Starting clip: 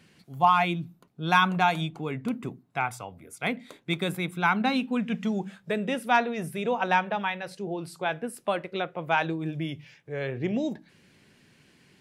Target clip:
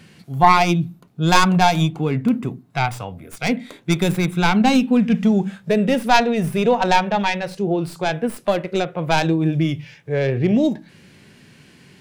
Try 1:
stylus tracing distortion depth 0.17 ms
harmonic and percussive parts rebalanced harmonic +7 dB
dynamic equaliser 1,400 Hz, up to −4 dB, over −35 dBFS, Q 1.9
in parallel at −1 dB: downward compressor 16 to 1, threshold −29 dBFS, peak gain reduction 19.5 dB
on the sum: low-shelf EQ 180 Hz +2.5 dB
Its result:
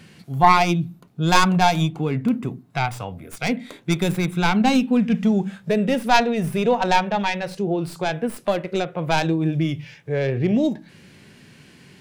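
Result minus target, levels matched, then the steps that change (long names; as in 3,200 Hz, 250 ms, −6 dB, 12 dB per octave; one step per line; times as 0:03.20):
downward compressor: peak gain reduction +9 dB
change: downward compressor 16 to 1, threshold −19.5 dBFS, peak gain reduction 11 dB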